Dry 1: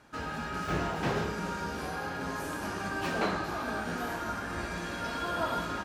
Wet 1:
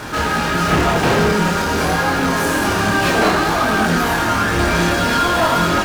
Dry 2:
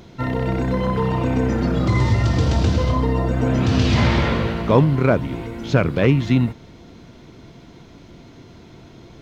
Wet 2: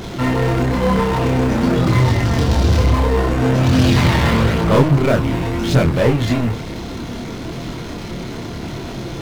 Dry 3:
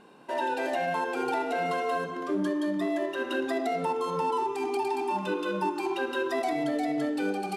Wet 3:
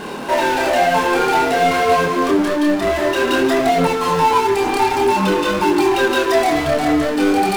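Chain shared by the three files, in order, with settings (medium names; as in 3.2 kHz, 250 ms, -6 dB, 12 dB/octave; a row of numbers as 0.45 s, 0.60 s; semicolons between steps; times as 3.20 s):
power-law waveshaper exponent 0.5; chorus voices 2, 0.52 Hz, delay 26 ms, depth 3.1 ms; normalise loudness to -16 LUFS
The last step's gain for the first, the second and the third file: +13.5 dB, -1.0 dB, +12.0 dB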